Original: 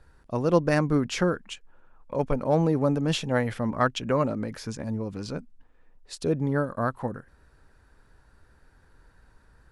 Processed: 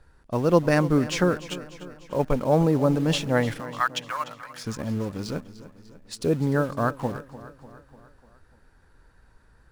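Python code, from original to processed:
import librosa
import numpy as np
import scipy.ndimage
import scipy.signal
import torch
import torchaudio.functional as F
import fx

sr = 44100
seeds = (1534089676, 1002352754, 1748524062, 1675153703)

p1 = fx.highpass(x, sr, hz=950.0, slope=24, at=(3.59, 4.63), fade=0.02)
p2 = fx.quant_dither(p1, sr, seeds[0], bits=6, dither='none')
p3 = p1 + (p2 * 10.0 ** (-10.0 / 20.0))
y = fx.echo_feedback(p3, sr, ms=297, feedback_pct=56, wet_db=-16.0)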